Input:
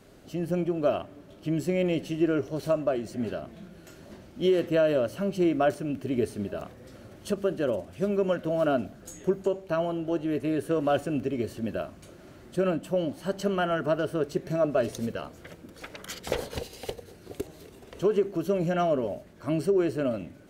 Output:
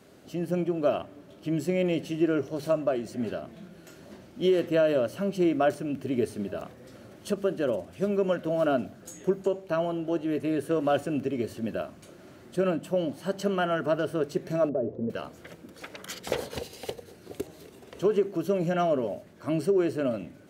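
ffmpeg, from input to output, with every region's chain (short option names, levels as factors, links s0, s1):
-filter_complex "[0:a]asettb=1/sr,asplit=3[s0][s1][s2];[s0]atrim=end=14.694[s3];[s1]atrim=start=14.69:end=15.1,asetpts=PTS-STARTPTS,afade=t=in:d=0.004:c=qsin,afade=t=out:st=0.406:d=0.004:c=qsin,lowpass=f=480:t=q:w=1.5,acompressor=threshold=0.0562:ratio=2.5:attack=3.2:release=140:knee=1:detection=peak[s4];[s2]atrim=start=15.096[s5];[s3][s4]acrossfade=d=0.004:c1=hsin:c2=qsin[s6];[s6][s5]acrossfade=d=0.004:c1=qsin:c2=hsin,highpass=91,bandreject=f=50:t=h:w=6,bandreject=f=100:t=h:w=6,bandreject=f=150:t=h:w=6"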